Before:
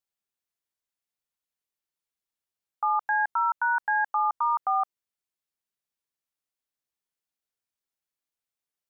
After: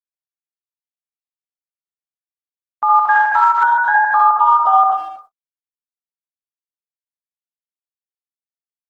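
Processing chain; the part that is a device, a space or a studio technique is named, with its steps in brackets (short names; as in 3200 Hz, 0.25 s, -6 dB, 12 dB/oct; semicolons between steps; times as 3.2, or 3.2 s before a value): speakerphone in a meeting room (reverb RT60 0.65 s, pre-delay 57 ms, DRR -3 dB; speakerphone echo 0.25 s, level -23 dB; AGC gain up to 6 dB; gate -45 dBFS, range -60 dB; gain +3.5 dB; Opus 16 kbps 48000 Hz)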